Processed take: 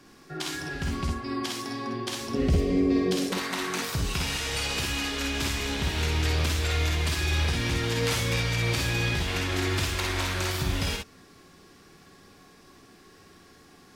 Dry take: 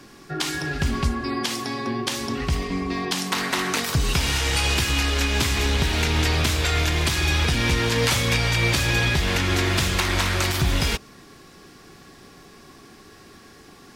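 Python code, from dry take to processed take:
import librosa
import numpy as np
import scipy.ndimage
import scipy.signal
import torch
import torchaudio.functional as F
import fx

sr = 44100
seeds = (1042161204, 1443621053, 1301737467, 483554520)

y = fx.low_shelf_res(x, sr, hz=700.0, db=8.0, q=3.0, at=(2.34, 3.33))
y = fx.room_early_taps(y, sr, ms=(51, 62), db=(-4.5, -4.5))
y = F.gain(torch.from_numpy(y), -8.5).numpy()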